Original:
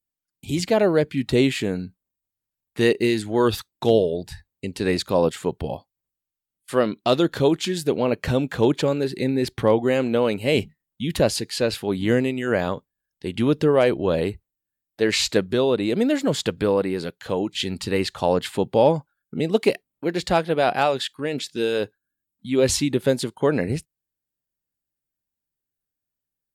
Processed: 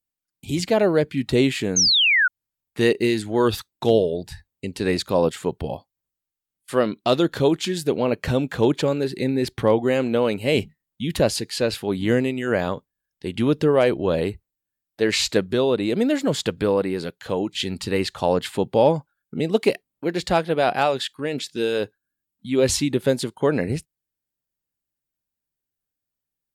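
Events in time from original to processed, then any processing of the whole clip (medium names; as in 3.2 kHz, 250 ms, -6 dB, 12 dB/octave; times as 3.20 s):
1.76–2.28 s: painted sound fall 1.4–6.6 kHz -17 dBFS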